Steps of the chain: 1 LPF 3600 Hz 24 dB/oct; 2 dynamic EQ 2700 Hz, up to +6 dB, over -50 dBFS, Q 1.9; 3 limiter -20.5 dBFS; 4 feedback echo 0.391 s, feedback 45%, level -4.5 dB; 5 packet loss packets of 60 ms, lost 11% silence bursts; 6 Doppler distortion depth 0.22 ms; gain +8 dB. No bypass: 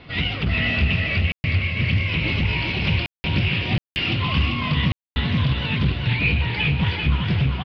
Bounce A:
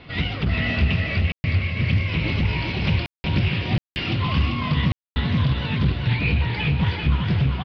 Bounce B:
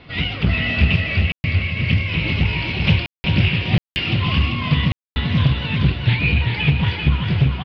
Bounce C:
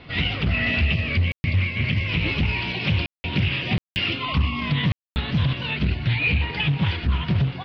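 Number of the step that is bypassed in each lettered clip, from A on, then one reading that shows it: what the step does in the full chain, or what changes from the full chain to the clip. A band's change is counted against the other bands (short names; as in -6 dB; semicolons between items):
2, loudness change -1.0 LU; 3, crest factor change +3.0 dB; 4, crest factor change -2.0 dB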